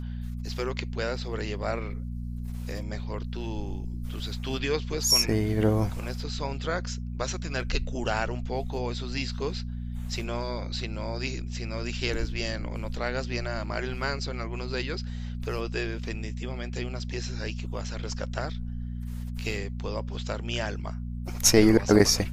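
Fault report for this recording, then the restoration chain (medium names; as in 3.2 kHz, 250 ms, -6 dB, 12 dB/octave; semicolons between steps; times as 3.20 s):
hum 60 Hz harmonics 4 -34 dBFS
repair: de-hum 60 Hz, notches 4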